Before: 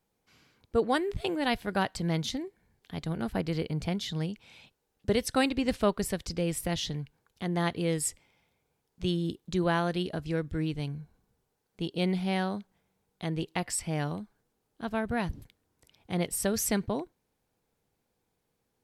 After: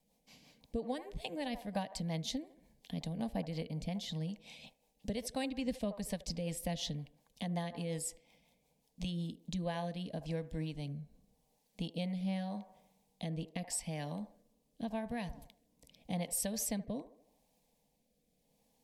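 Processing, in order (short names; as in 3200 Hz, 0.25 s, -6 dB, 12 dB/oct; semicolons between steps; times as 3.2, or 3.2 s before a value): dynamic EQ 1500 Hz, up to +6 dB, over -47 dBFS, Q 1.5; compressor 2.5:1, threshold -43 dBFS, peak gain reduction 16 dB; fixed phaser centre 370 Hz, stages 6; on a send: band-limited delay 76 ms, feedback 49%, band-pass 740 Hz, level -12.5 dB; on the sum: rotary speaker horn 5.5 Hz, later 0.85 Hz, at 9.14; gain +7 dB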